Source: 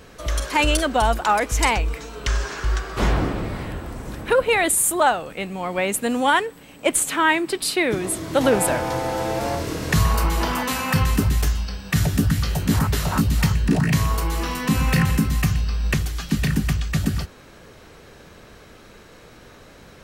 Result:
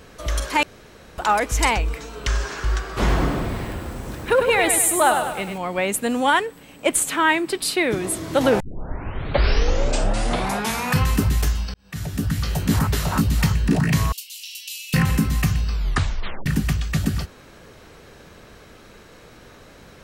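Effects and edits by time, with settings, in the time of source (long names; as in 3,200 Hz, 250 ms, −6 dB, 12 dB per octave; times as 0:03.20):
0:00.63–0:01.18: fill with room tone
0:02.98–0:05.58: feedback echo at a low word length 100 ms, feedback 55%, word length 7 bits, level −6 dB
0:08.60: tape start 2.42 s
0:11.74–0:12.57: fade in
0:14.12–0:14.94: Chebyshev high-pass filter 2,700 Hz, order 5
0:15.73: tape stop 0.73 s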